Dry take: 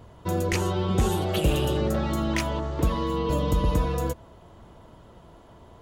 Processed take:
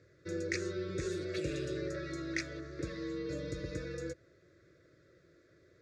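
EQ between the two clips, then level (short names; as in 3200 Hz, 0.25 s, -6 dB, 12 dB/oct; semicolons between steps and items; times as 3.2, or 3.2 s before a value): Butterworth band-stop 890 Hz, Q 0.76; speaker cabinet 220–5600 Hz, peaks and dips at 280 Hz -4 dB, 440 Hz -10 dB, 690 Hz -5 dB, 1300 Hz -4 dB; fixed phaser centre 820 Hz, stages 6; 0.0 dB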